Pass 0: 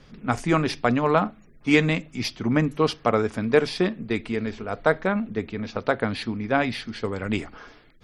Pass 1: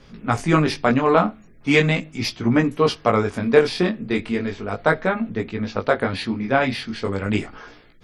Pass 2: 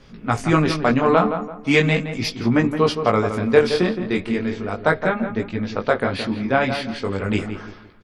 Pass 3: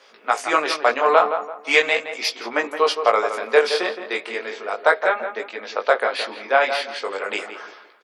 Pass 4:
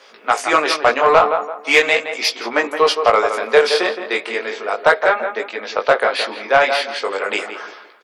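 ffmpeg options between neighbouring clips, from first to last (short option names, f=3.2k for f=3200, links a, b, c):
-af "flanger=delay=17:depth=6.2:speed=0.38,volume=6.5dB"
-filter_complex "[0:a]asplit=2[a][b];[b]adelay=168,lowpass=f=1.8k:p=1,volume=-8dB,asplit=2[c][d];[d]adelay=168,lowpass=f=1.8k:p=1,volume=0.34,asplit=2[e][f];[f]adelay=168,lowpass=f=1.8k:p=1,volume=0.34,asplit=2[g][h];[h]adelay=168,lowpass=f=1.8k:p=1,volume=0.34[i];[a][c][e][g][i]amix=inputs=5:normalize=0"
-af "highpass=f=490:w=0.5412,highpass=f=490:w=1.3066,volume=3dB"
-af "acontrast=63,volume=-1dB"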